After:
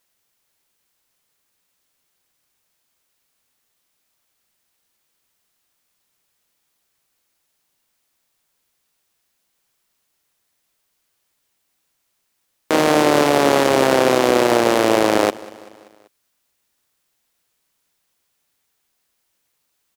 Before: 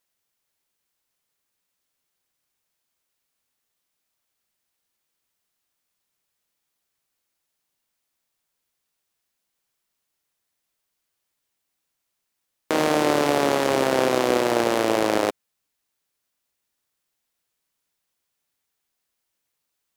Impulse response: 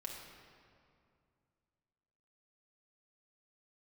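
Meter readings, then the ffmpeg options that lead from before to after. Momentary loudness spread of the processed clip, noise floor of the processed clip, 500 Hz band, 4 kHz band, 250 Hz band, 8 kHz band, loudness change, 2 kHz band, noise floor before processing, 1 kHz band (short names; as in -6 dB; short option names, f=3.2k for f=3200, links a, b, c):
4 LU, -71 dBFS, +5.5 dB, +5.5 dB, +5.5 dB, +5.5 dB, +5.5 dB, +5.5 dB, -79 dBFS, +5.5 dB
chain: -af "aecho=1:1:193|386|579|772:0.0668|0.0381|0.0217|0.0124,alimiter=level_in=9dB:limit=-1dB:release=50:level=0:latency=1,volume=-1dB"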